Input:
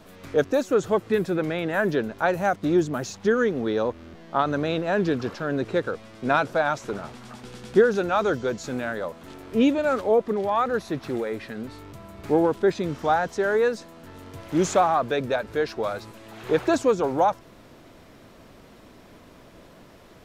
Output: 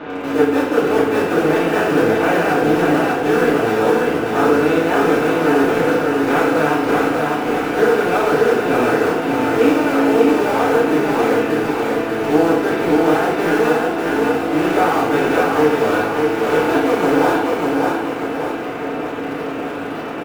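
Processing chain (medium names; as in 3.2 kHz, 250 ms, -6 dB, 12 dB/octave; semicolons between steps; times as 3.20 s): spectral levelling over time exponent 0.4; four-pole ladder low-pass 3.3 kHz, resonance 40%; in parallel at -11.5 dB: bit crusher 4-bit; on the sum: flange 0.59 Hz, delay 4.9 ms, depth 8.8 ms, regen +72%; on a send: feedback delay 594 ms, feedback 48%, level -3 dB; on the sum: FDN reverb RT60 0.77 s, low-frequency decay 0.9×, high-frequency decay 0.8×, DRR -7 dB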